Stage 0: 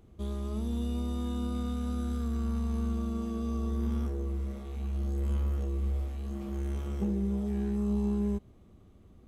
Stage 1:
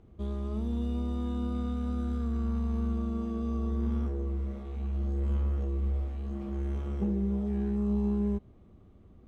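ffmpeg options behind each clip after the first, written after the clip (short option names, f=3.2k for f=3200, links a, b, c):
-af "aemphasis=mode=reproduction:type=75fm"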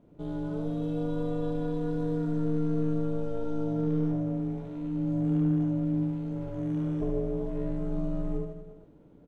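-af "aeval=exprs='val(0)*sin(2*PI*230*n/s)':c=same,aecho=1:1:70|150.5|243.1|349.5|472:0.631|0.398|0.251|0.158|0.1"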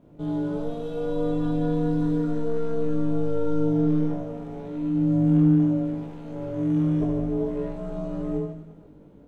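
-af "flanger=delay=19.5:depth=2.2:speed=0.57,volume=8.5dB"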